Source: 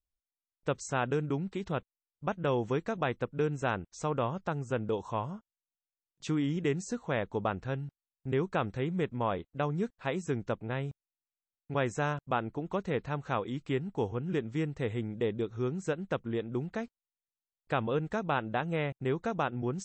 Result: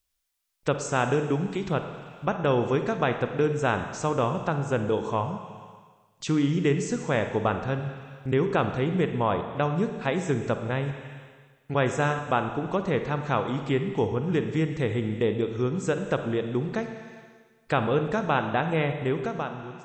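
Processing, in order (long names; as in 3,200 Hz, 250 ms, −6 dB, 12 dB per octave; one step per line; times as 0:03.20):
fade-out on the ending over 0.95 s
four-comb reverb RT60 1.4 s, DRR 7 dB
one half of a high-frequency compander encoder only
level +6 dB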